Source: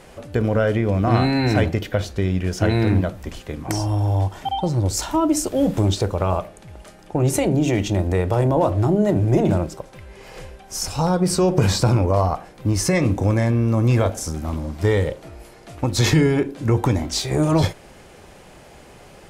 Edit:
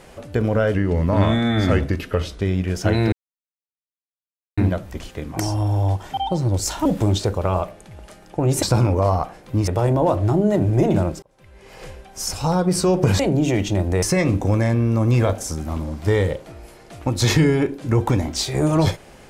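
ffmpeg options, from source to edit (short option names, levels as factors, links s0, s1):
-filter_complex "[0:a]asplit=10[s0][s1][s2][s3][s4][s5][s6][s7][s8][s9];[s0]atrim=end=0.744[s10];[s1]atrim=start=0.74:end=2.18,asetpts=PTS-STARTPTS,asetrate=37926,aresample=44100[s11];[s2]atrim=start=2.176:end=2.89,asetpts=PTS-STARTPTS,afade=t=out:st=0.71:d=0.004:c=hsin,apad=pad_dur=1.45[s12];[s3]atrim=start=2.89:end=5.172,asetpts=PTS-STARTPTS,afade=t=in:d=0.004:c=hsin[s13];[s4]atrim=start=5.618:end=7.392[s14];[s5]atrim=start=11.738:end=12.792[s15];[s6]atrim=start=8.218:end=9.77,asetpts=PTS-STARTPTS,afade=t=out:st=1.548:d=0.004:c=hsin[s16];[s7]atrim=start=9.77:end=11.742,asetpts=PTS-STARTPTS,afade=t=in:d=0.62[s17];[s8]atrim=start=7.388:end=8.222[s18];[s9]atrim=start=12.788[s19];[s10][s11]acrossfade=d=0.004:c1=hsin:c2=hsin[s20];[s12][s13]concat=n=2:v=0:a=1[s21];[s20][s21]acrossfade=d=0.004:c1=hsin:c2=hsin[s22];[s22][s14]acrossfade=d=0.004:c1=hsin:c2=hsin[s23];[s23][s15]acrossfade=d=0.004:c1=hsin:c2=hsin[s24];[s16][s17]concat=n=2:v=0:a=1[s25];[s24][s25]acrossfade=d=0.004:c1=hsin:c2=hsin[s26];[s26][s18]acrossfade=d=0.004:c1=hsin:c2=hsin[s27];[s27][s19]acrossfade=d=0.004:c1=hsin:c2=hsin"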